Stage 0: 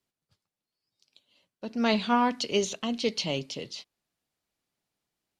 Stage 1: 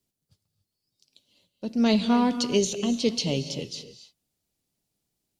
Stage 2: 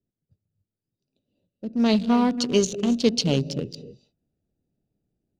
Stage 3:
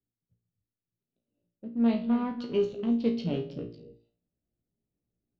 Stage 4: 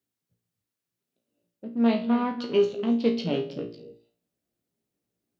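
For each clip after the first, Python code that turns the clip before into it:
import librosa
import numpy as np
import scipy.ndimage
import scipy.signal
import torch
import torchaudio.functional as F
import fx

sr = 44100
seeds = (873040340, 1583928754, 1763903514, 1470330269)

y1 = fx.peak_eq(x, sr, hz=1400.0, db=-13.5, octaves=2.8)
y1 = fx.rev_gated(y1, sr, seeds[0], gate_ms=310, shape='rising', drr_db=11.0)
y1 = F.gain(torch.from_numpy(y1), 8.0).numpy()
y2 = fx.wiener(y1, sr, points=41)
y2 = fx.rider(y2, sr, range_db=10, speed_s=2.0)
y2 = F.gain(torch.from_numpy(y2), 3.0).numpy()
y3 = fx.air_absorb(y2, sr, metres=400.0)
y3 = fx.comb_fb(y3, sr, f0_hz=58.0, decay_s=0.35, harmonics='all', damping=0.0, mix_pct=90)
y4 = fx.highpass(y3, sr, hz=390.0, slope=6)
y4 = F.gain(torch.from_numpy(y4), 8.0).numpy()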